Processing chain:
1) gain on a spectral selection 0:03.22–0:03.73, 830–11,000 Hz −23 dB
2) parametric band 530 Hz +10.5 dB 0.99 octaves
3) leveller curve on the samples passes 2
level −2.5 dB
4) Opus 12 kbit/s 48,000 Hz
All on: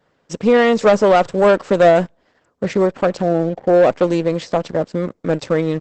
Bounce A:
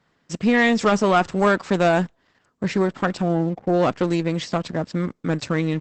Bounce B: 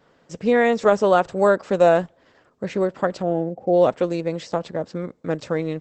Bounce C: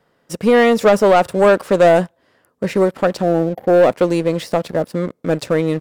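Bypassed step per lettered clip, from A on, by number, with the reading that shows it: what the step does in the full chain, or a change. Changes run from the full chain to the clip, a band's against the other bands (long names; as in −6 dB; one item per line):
2, 500 Hz band −7.5 dB
3, change in crest factor +4.0 dB
4, change in crest factor −1.5 dB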